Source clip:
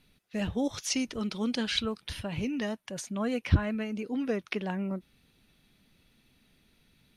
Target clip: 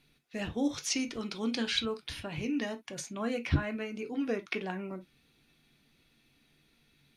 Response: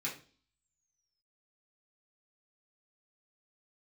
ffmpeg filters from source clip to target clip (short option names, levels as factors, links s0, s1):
-filter_complex "[0:a]asplit=2[s0][s1];[1:a]atrim=start_sample=2205,atrim=end_sample=3087,lowpass=8600[s2];[s1][s2]afir=irnorm=-1:irlink=0,volume=0.473[s3];[s0][s3]amix=inputs=2:normalize=0,volume=0.708"